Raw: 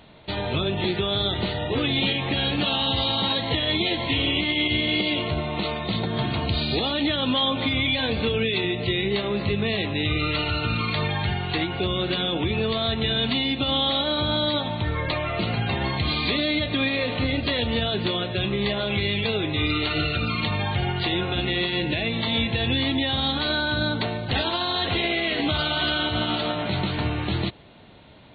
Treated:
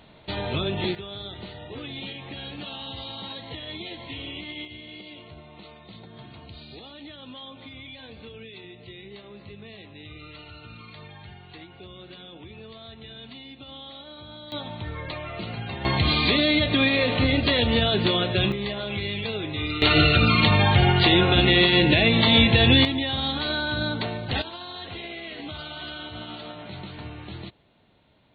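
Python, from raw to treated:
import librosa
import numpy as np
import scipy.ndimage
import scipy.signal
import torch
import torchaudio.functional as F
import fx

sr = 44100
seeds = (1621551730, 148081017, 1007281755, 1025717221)

y = fx.gain(x, sr, db=fx.steps((0.0, -2.0), (0.95, -13.0), (4.65, -19.0), (14.52, -8.0), (15.85, 3.0), (18.52, -5.0), (19.82, 7.0), (22.85, -2.5), (24.42, -12.5)))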